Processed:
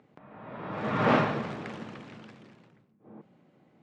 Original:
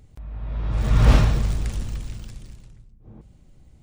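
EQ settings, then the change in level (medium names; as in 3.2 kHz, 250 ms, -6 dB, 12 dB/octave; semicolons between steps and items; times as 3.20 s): high-pass 170 Hz 24 dB/octave; low-pass 1.9 kHz 12 dB/octave; bass shelf 280 Hz -8.5 dB; +4.5 dB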